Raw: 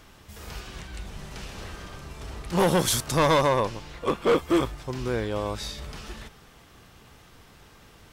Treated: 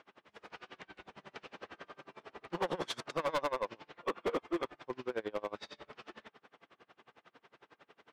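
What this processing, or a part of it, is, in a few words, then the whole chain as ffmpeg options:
helicopter radio: -filter_complex "[0:a]highpass=330,lowpass=2.6k,aeval=exprs='val(0)*pow(10,-30*(0.5-0.5*cos(2*PI*11*n/s))/20)':c=same,asoftclip=type=hard:threshold=-28dB,asettb=1/sr,asplit=3[a][b][c];[a]atrim=end=1.944[d];[b]atrim=start=1.94:end=2.36,asetpts=PTS-STARTPTS,afade=t=in:d=0.004:c=qsin,afade=t=out:st=0.416:d=0.004:c=qsin,highpass=110[e];[c]atrim=start=2.356[f];[d][e]acrossfade=d=0.004:c1=hsin:c2=qsin[g];[g][f]acrossfade=d=0.004:c1=qsin:c2=hsin"

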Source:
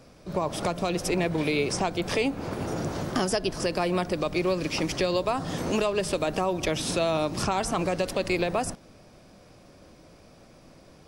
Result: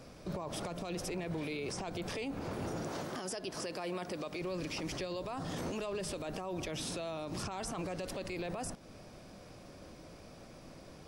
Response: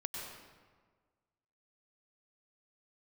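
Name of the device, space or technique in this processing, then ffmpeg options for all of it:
stacked limiters: -filter_complex "[0:a]asettb=1/sr,asplit=3[a][b][c];[a]atrim=end=2.834[d];[b]atrim=start=2.83:end=4.41,asetpts=PTS-STARTPTS,afade=t=in:d=0.004:c=qsin,afade=t=out:st=1.576:d=0.004:c=qsin,highpass=f=280:p=1[e];[c]atrim=start=4.406[f];[d][e]acrossfade=d=0.004:c1=hsin:c2=qsin[g];[g][f]acrossfade=d=0.004:c1=qsin:c2=hsin,alimiter=limit=-19dB:level=0:latency=1:release=84,alimiter=limit=-23.5dB:level=0:latency=1:release=13,alimiter=level_in=6.5dB:limit=-24dB:level=0:latency=1:release=257,volume=-6.5dB"

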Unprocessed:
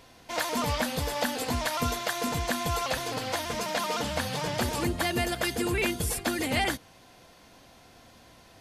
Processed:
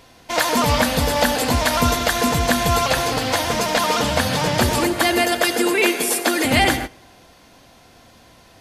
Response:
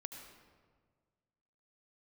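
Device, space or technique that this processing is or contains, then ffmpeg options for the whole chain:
keyed gated reverb: -filter_complex "[0:a]asettb=1/sr,asplit=3[a][b][c];[a]atrim=end=4.784[d];[b]atrim=start=4.78:end=6.45,asetpts=PTS-STARTPTS,afade=t=in:d=0.004:c=qsin,afade=t=out:st=1.666:d=0.004:c=qsin,highpass=f=260:w=0.5412,highpass=f=260:w=1.3066[e];[c]atrim=start=6.446[f];[d][e]acrossfade=d=0.004:c1=hsin:c2=qsin[g];[g][f]acrossfade=d=0.004:c1=qsin:c2=hsin,asplit=3[h][i][j];[1:a]atrim=start_sample=2205[k];[i][k]afir=irnorm=-1:irlink=0[l];[j]apad=whole_len=379311[m];[l][m]sidechaingate=range=-18dB:threshold=-43dB:ratio=16:detection=peak,volume=6dB[n];[h][n]amix=inputs=2:normalize=0,volume=4dB"

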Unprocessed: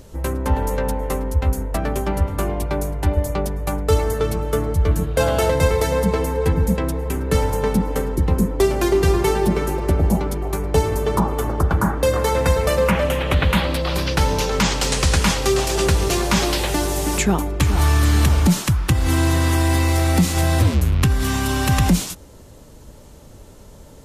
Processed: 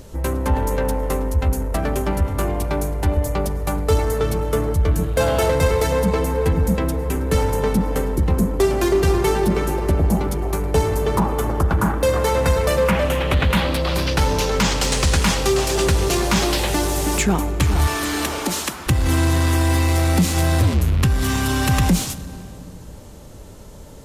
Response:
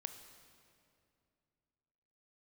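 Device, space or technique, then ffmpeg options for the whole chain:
saturated reverb return: -filter_complex "[0:a]asettb=1/sr,asplit=3[a][b][c];[a]atrim=end=17.874[d];[b]atrim=start=17.87:end=18.87,asetpts=PTS-STARTPTS,afade=t=in:d=0.004:c=qsin,afade=t=out:st=0.996:d=0.004:c=qsin,highpass=f=280:w=0.5412,highpass=f=280:w=1.3066[e];[c]atrim=start=18.866[f];[d][e]acrossfade=d=0.004:c1=hsin:c2=qsin[g];[g][f]acrossfade=d=0.004:c1=qsin:c2=hsin,asplit=2[h][i];[1:a]atrim=start_sample=2205[j];[i][j]afir=irnorm=-1:irlink=0,asoftclip=type=tanh:threshold=-24.5dB,volume=3dB[k];[h][k]amix=inputs=2:normalize=0,volume=-3dB"

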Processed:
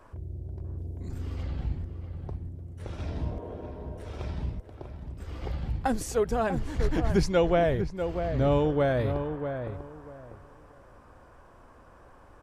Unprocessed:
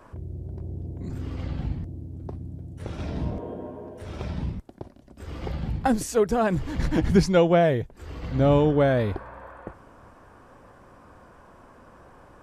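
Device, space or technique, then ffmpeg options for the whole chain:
low shelf boost with a cut just above: -filter_complex "[0:a]asettb=1/sr,asplit=3[a][b][c];[a]atrim=end=0.784[d];[b]atrim=start=0.78:end=1.43,asetpts=PTS-STARTPTS,afade=t=in:d=0.004:c=qsin,afade=t=out:st=0.646:d=0.004:c=qsin,highshelf=f=5.8k:g=6[e];[c]atrim=start=1.426[f];[d][e]acrossfade=d=0.004:c1=hsin:c2=qsin[g];[g][f]acrossfade=d=0.004:c1=qsin:c2=hsin,lowshelf=f=83:g=6,equalizer=f=190:t=o:w=1.1:g=-5,asplit=2[h][i];[i]adelay=644,lowpass=f=1.6k:p=1,volume=-7.5dB,asplit=2[j][k];[k]adelay=644,lowpass=f=1.6k:p=1,volume=0.22,asplit=2[l][m];[m]adelay=644,lowpass=f=1.6k:p=1,volume=0.22[n];[h][j][l][n]amix=inputs=4:normalize=0,volume=-4dB"

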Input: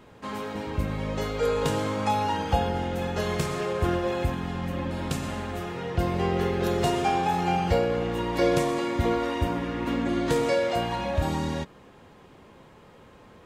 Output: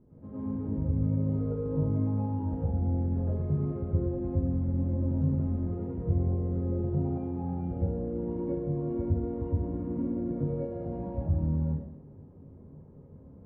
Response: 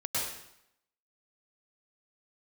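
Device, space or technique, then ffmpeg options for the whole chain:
television next door: -filter_complex "[0:a]acompressor=threshold=-27dB:ratio=6,lowpass=270[a];[1:a]atrim=start_sample=2205[b];[a][b]afir=irnorm=-1:irlink=0,volume=-1.5dB"

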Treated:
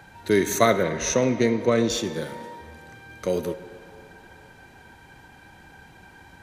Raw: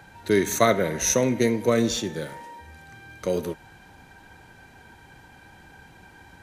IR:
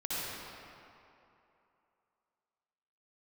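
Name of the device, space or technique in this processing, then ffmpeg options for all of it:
filtered reverb send: -filter_complex "[0:a]asettb=1/sr,asplit=3[a][b][c];[a]atrim=end=0.834[d];[b]atrim=start=0.83:end=1.9,asetpts=PTS-STARTPTS,afade=t=in:d=0.004:c=qsin,afade=t=out:st=1.066:d=0.004:c=qsin,lowpass=5.4k[e];[c]atrim=start=1.896[f];[d][e]acrossfade=d=0.004:c1=hsin:c2=qsin[g];[g][f]acrossfade=d=0.004:c1=qsin:c2=hsin,asplit=2[h][i];[i]highpass=150,lowpass=6.2k[j];[1:a]atrim=start_sample=2205[k];[j][k]afir=irnorm=-1:irlink=0,volume=-18dB[l];[h][l]amix=inputs=2:normalize=0"

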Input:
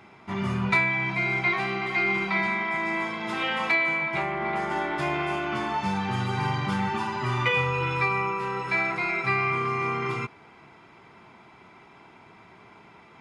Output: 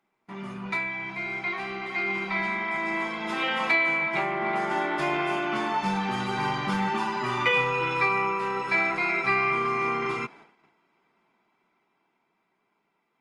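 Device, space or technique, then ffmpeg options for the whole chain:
video call: -af "highpass=f=170:w=0.5412,highpass=f=170:w=1.3066,dynaudnorm=f=380:g=13:m=9dB,agate=range=-16dB:threshold=-42dB:ratio=16:detection=peak,volume=-7dB" -ar 48000 -c:a libopus -b:a 32k

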